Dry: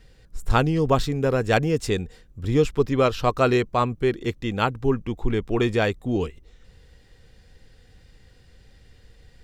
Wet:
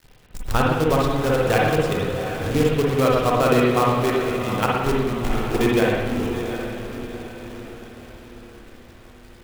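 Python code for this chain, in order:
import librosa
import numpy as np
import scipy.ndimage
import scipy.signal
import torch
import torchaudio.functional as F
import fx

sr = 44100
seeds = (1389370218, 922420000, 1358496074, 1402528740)

y = fx.level_steps(x, sr, step_db=10)
y = fx.echo_diffused(y, sr, ms=759, feedback_pct=47, wet_db=-9)
y = fx.quant_companded(y, sr, bits=4)
y = fx.rev_spring(y, sr, rt60_s=1.2, pass_ms=(53, 57), chirp_ms=60, drr_db=-3.5)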